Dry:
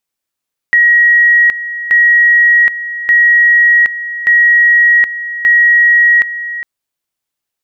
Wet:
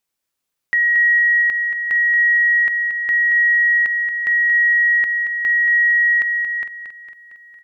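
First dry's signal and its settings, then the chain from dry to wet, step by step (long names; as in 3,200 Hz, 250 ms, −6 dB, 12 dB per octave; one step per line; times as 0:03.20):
tone at two levels in turn 1,900 Hz −4.5 dBFS, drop 13.5 dB, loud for 0.77 s, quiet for 0.41 s, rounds 5
brickwall limiter −12.5 dBFS
repeating echo 228 ms, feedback 59%, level −8.5 dB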